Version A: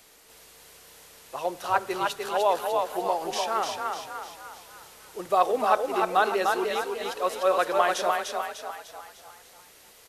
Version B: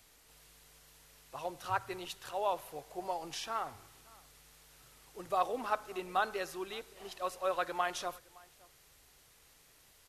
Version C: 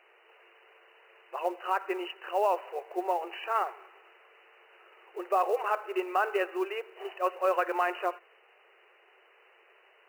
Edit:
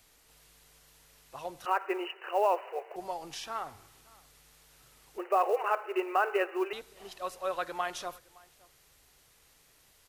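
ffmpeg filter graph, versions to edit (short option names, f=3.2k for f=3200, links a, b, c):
-filter_complex "[2:a]asplit=2[a][b];[1:a]asplit=3[c][d][e];[c]atrim=end=1.662[f];[a]atrim=start=1.658:end=2.962[g];[d]atrim=start=2.958:end=5.182[h];[b]atrim=start=5.178:end=6.732[i];[e]atrim=start=6.728[j];[f][g]acrossfade=d=0.004:c1=hsin:c2=hsin[k];[k][h]acrossfade=d=0.004:c1=hsin:c2=hsin[l];[l][i]acrossfade=d=0.004:c1=hsin:c2=hsin[m];[m][j]acrossfade=d=0.004:c1=hsin:c2=hsin"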